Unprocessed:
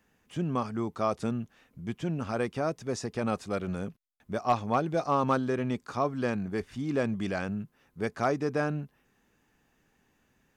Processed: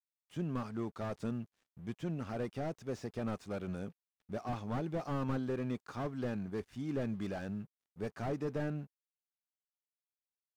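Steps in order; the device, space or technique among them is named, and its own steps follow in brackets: early transistor amplifier (crossover distortion -57.5 dBFS; slew-rate limiter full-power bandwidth 22 Hz); trim -6 dB

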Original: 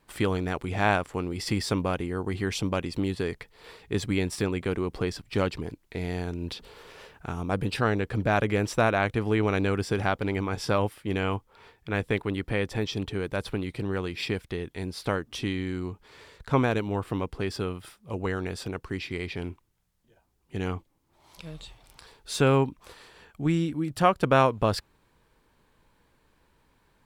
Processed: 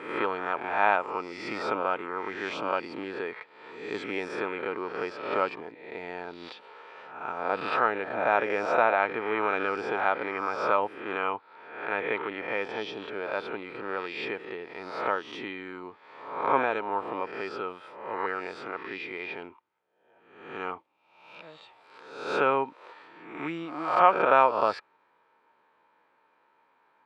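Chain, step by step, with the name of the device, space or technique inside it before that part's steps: reverse spectral sustain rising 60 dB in 0.80 s; tin-can telephone (band-pass 500–2100 Hz; small resonant body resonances 910/1300/2400 Hz, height 8 dB)

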